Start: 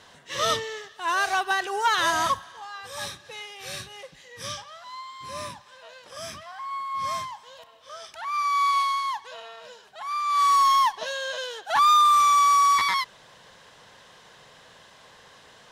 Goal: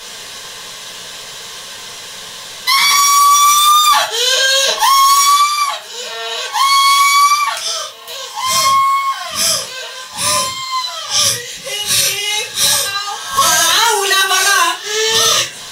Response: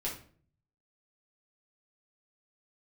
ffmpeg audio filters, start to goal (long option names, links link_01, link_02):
-filter_complex "[0:a]areverse,asplit=2[link_01][link_02];[link_02]acompressor=threshold=-31dB:ratio=6,volume=1dB[link_03];[link_01][link_03]amix=inputs=2:normalize=0,crystalizer=i=8:c=0[link_04];[1:a]atrim=start_sample=2205,afade=type=out:start_time=0.22:duration=0.01,atrim=end_sample=10143,asetrate=52920,aresample=44100[link_05];[link_04][link_05]afir=irnorm=-1:irlink=0,alimiter=level_in=5.5dB:limit=-1dB:release=50:level=0:latency=1,volume=-1dB"